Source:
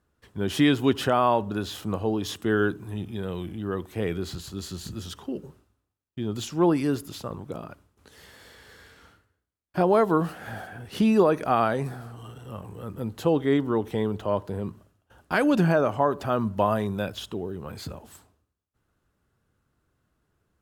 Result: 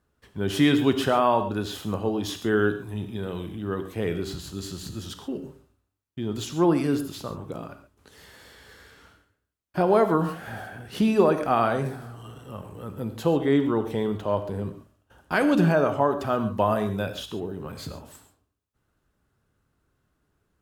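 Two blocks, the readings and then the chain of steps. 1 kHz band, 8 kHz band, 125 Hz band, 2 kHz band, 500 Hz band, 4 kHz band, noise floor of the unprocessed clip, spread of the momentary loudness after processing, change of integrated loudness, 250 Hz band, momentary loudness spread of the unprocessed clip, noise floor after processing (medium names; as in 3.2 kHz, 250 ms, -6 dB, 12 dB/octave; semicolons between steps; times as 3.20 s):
+0.5 dB, +0.5 dB, +0.5 dB, +1.0 dB, +1.0 dB, +1.0 dB, -77 dBFS, 18 LU, +0.5 dB, +0.5 dB, 17 LU, -75 dBFS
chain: gated-style reverb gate 160 ms flat, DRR 8 dB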